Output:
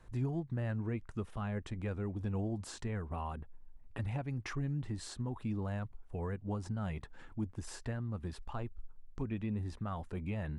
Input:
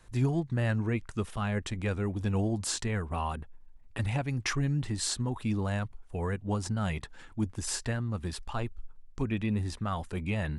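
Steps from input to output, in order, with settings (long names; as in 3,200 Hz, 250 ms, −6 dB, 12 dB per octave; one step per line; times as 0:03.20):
downward compressor 1.5 to 1, threshold −45 dBFS, peak gain reduction 8 dB
high-shelf EQ 2,300 Hz −11.5 dB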